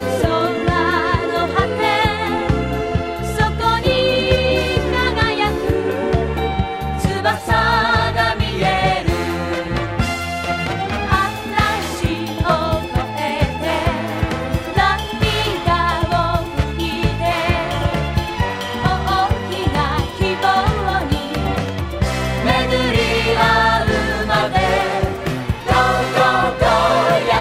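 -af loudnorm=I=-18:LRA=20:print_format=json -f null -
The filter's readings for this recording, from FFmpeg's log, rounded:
"input_i" : "-17.5",
"input_tp" : "-1.2",
"input_lra" : "3.1",
"input_thresh" : "-27.5",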